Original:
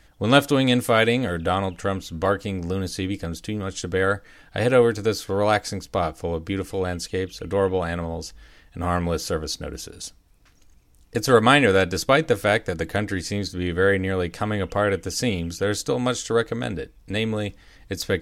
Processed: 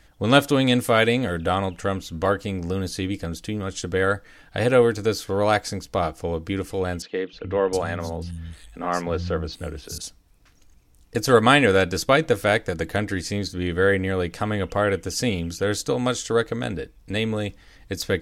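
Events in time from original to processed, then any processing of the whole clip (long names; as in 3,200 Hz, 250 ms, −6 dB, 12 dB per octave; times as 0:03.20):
0:07.02–0:09.98: three-band delay without the direct sound mids, lows, highs 310/710 ms, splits 180/4,100 Hz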